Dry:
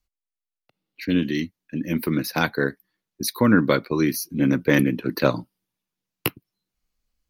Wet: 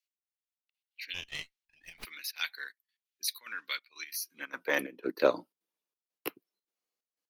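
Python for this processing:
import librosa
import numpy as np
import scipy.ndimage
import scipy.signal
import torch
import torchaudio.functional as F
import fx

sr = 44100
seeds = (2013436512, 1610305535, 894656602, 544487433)

y = fx.step_gate(x, sr, bpm=182, pattern='xx.xxxx..x.xx', floor_db=-12.0, edge_ms=4.5)
y = fx.filter_sweep_highpass(y, sr, from_hz=2600.0, to_hz=420.0, start_s=4.01, end_s=5.02, q=1.7)
y = fx.running_max(y, sr, window=3, at=(1.14, 2.05))
y = y * 10.0 ** (-7.5 / 20.0)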